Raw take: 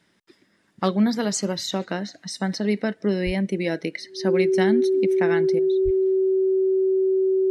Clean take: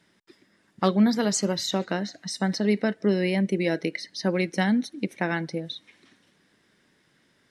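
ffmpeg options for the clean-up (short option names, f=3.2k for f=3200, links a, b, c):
-filter_complex "[0:a]bandreject=f=380:w=30,asplit=3[a][b][c];[a]afade=t=out:st=3.25:d=0.02[d];[b]highpass=f=140:w=0.5412,highpass=f=140:w=1.3066,afade=t=in:st=3.25:d=0.02,afade=t=out:st=3.37:d=0.02[e];[c]afade=t=in:st=3.37:d=0.02[f];[d][e][f]amix=inputs=3:normalize=0,asplit=3[g][h][i];[g]afade=t=out:st=5.84:d=0.02[j];[h]highpass=f=140:w=0.5412,highpass=f=140:w=1.3066,afade=t=in:st=5.84:d=0.02,afade=t=out:st=5.96:d=0.02[k];[i]afade=t=in:st=5.96:d=0.02[l];[j][k][l]amix=inputs=3:normalize=0,asetnsamples=n=441:p=0,asendcmd='5.59 volume volume 11dB',volume=0dB"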